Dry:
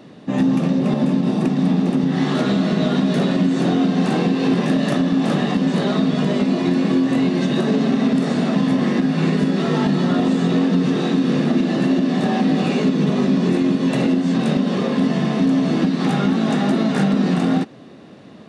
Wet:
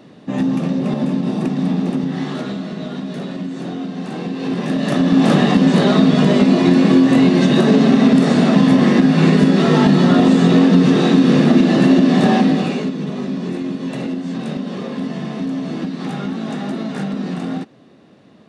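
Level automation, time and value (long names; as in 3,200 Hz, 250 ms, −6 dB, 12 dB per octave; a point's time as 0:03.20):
0:01.92 −1 dB
0:02.70 −8.5 dB
0:04.08 −8.5 dB
0:04.78 −1 dB
0:05.20 +6 dB
0:12.33 +6 dB
0:12.97 −6 dB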